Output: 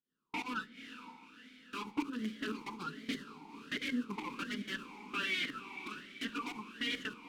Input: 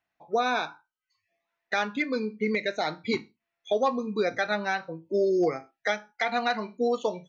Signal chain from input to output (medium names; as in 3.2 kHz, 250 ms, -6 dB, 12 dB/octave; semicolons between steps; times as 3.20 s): expander on every frequency bin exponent 3; in parallel at -2 dB: compression 6:1, threshold -36 dBFS, peak gain reduction 12.5 dB; on the sum: Chebyshev shaper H 6 -6 dB, 7 -7 dB, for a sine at -16.5 dBFS; added noise pink -40 dBFS; gate -31 dBFS, range -38 dB; static phaser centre 450 Hz, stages 8; integer overflow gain 23 dB; volume shaper 143 bpm, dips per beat 1, -17 dB, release 172 ms; saturation -29 dBFS, distortion -14 dB; echo that smears into a reverb 510 ms, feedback 54%, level -11 dB; simulated room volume 1400 m³, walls mixed, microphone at 0.34 m; talking filter i-u 1.3 Hz; trim +11 dB